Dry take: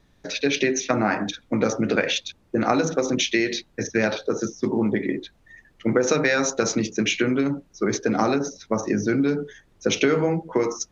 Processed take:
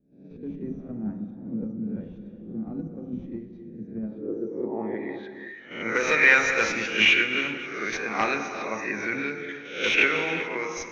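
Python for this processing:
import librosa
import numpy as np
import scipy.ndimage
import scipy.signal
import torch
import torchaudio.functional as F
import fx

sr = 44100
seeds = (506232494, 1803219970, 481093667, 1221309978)

p1 = fx.spec_swells(x, sr, rise_s=0.55)
p2 = fx.tilt_eq(p1, sr, slope=3.5)
p3 = fx.level_steps(p2, sr, step_db=20)
p4 = p2 + F.gain(torch.from_numpy(p3), 1.5).numpy()
p5 = fx.clip_asym(p4, sr, top_db=-10.0, bottom_db=-7.0)
p6 = fx.filter_sweep_lowpass(p5, sr, from_hz=200.0, to_hz=2300.0, start_s=3.98, end_s=5.56, q=3.0)
p7 = p6 + fx.echo_single(p6, sr, ms=526, db=-21.5, dry=0)
p8 = fx.rev_gated(p7, sr, seeds[0], gate_ms=420, shape='flat', drr_db=7.0)
p9 = fx.am_noise(p8, sr, seeds[1], hz=5.7, depth_pct=55)
y = F.gain(torch.from_numpy(p9), -5.5).numpy()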